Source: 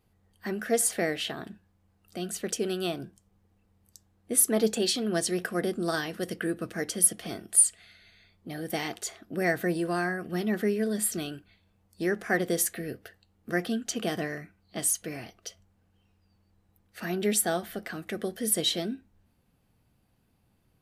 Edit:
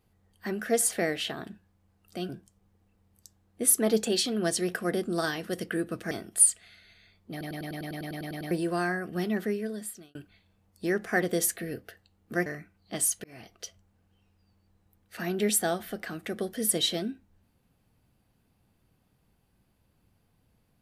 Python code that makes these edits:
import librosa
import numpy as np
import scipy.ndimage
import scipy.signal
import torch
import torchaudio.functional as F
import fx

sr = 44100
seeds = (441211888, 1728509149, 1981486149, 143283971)

y = fx.edit(x, sr, fx.cut(start_s=2.29, length_s=0.7),
    fx.cut(start_s=6.81, length_s=0.47),
    fx.stutter_over(start_s=8.48, slice_s=0.1, count=12),
    fx.fade_out_span(start_s=10.39, length_s=0.93),
    fx.cut(start_s=13.63, length_s=0.66),
    fx.fade_in_span(start_s=15.07, length_s=0.29), tone=tone)